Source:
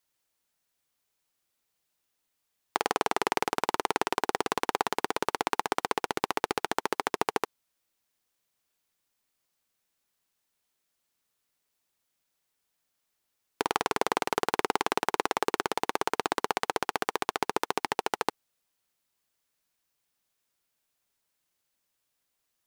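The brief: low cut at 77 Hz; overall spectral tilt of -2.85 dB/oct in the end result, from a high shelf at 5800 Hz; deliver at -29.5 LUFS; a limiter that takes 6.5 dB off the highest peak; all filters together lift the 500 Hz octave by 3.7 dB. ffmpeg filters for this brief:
-af "highpass=77,equalizer=f=500:t=o:g=4.5,highshelf=f=5.8k:g=8,volume=4dB,alimiter=limit=-5dB:level=0:latency=1"

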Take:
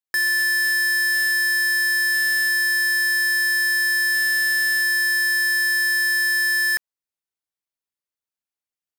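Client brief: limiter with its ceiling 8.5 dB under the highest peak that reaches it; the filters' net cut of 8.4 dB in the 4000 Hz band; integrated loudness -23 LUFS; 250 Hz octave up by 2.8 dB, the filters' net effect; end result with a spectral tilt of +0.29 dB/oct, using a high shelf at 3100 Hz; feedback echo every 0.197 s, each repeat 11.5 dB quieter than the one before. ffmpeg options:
-af "equalizer=f=250:t=o:g=5.5,highshelf=f=3.1k:g=-7.5,equalizer=f=4k:t=o:g=-4.5,alimiter=level_in=3.5dB:limit=-24dB:level=0:latency=1,volume=-3.5dB,aecho=1:1:197|394|591:0.266|0.0718|0.0194,volume=7dB"

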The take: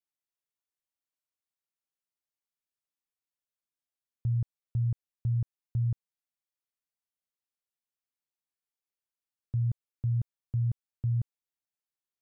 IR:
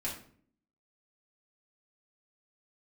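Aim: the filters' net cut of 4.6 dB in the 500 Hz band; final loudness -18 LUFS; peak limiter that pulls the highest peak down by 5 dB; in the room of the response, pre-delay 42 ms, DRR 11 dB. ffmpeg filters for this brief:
-filter_complex "[0:a]equalizer=f=500:t=o:g=-6.5,alimiter=level_in=5dB:limit=-24dB:level=0:latency=1,volume=-5dB,asplit=2[a][b];[1:a]atrim=start_sample=2205,adelay=42[c];[b][c]afir=irnorm=-1:irlink=0,volume=-13.5dB[d];[a][d]amix=inputs=2:normalize=0,volume=21.5dB"

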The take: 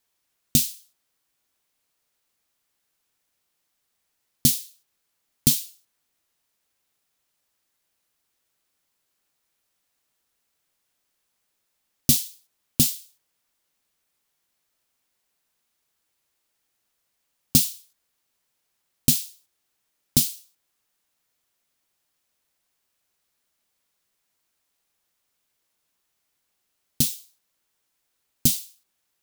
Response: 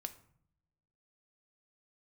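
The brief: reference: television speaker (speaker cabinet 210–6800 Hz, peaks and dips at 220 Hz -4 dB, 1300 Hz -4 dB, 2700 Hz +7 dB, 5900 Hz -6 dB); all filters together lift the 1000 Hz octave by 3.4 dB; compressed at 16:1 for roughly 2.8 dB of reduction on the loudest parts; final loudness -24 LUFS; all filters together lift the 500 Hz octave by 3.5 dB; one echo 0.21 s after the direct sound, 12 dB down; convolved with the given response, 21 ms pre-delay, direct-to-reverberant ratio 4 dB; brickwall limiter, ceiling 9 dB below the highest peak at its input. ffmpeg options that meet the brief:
-filter_complex "[0:a]equalizer=f=500:t=o:g=4.5,equalizer=f=1k:t=o:g=3.5,acompressor=threshold=-17dB:ratio=16,alimiter=limit=-10dB:level=0:latency=1,aecho=1:1:210:0.251,asplit=2[a][b];[1:a]atrim=start_sample=2205,adelay=21[c];[b][c]afir=irnorm=-1:irlink=0,volume=-1dB[d];[a][d]amix=inputs=2:normalize=0,highpass=f=210:w=0.5412,highpass=f=210:w=1.3066,equalizer=f=220:t=q:w=4:g=-4,equalizer=f=1.3k:t=q:w=4:g=-4,equalizer=f=2.7k:t=q:w=4:g=7,equalizer=f=5.9k:t=q:w=4:g=-6,lowpass=f=6.8k:w=0.5412,lowpass=f=6.8k:w=1.3066,volume=13dB"

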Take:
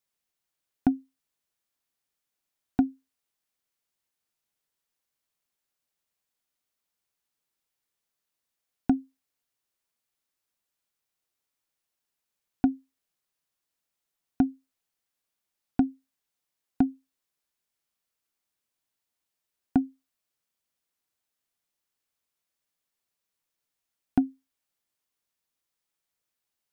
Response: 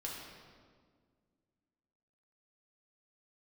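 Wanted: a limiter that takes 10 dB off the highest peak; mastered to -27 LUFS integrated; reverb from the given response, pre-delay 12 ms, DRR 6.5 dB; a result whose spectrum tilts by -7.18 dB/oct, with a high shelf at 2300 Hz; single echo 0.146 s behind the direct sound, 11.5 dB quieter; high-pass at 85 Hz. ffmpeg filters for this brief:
-filter_complex "[0:a]highpass=85,highshelf=f=2.3k:g=-6.5,alimiter=limit=-20dB:level=0:latency=1,aecho=1:1:146:0.266,asplit=2[a][b];[1:a]atrim=start_sample=2205,adelay=12[c];[b][c]afir=irnorm=-1:irlink=0,volume=-6.5dB[d];[a][d]amix=inputs=2:normalize=0,volume=8dB"

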